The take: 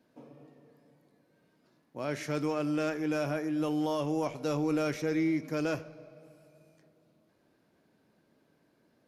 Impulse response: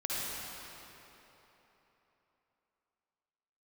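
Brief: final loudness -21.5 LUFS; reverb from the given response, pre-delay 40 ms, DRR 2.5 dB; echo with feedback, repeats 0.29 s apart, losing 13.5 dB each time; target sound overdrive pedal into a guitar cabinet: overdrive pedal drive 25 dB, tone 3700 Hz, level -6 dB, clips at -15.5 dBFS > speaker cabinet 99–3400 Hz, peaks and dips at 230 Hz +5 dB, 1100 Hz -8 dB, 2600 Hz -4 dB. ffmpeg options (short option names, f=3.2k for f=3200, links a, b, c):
-filter_complex "[0:a]aecho=1:1:290|580:0.211|0.0444,asplit=2[a][b];[1:a]atrim=start_sample=2205,adelay=40[c];[b][c]afir=irnorm=-1:irlink=0,volume=-9dB[d];[a][d]amix=inputs=2:normalize=0,asplit=2[e][f];[f]highpass=f=720:p=1,volume=25dB,asoftclip=type=tanh:threshold=-15.5dB[g];[e][g]amix=inputs=2:normalize=0,lowpass=f=3.7k:p=1,volume=-6dB,highpass=99,equalizer=f=230:t=q:w=4:g=5,equalizer=f=1.1k:t=q:w=4:g=-8,equalizer=f=2.6k:t=q:w=4:g=-4,lowpass=f=3.4k:w=0.5412,lowpass=f=3.4k:w=1.3066,volume=3dB"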